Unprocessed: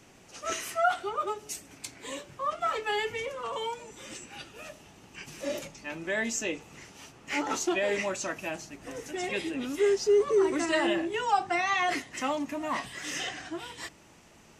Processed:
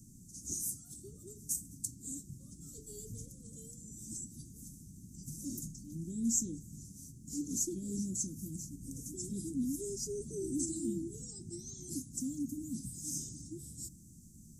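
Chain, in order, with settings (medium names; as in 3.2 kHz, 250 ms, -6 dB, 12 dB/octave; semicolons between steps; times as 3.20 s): inverse Chebyshev band-stop 630–2800 Hz, stop band 60 dB; trim +6 dB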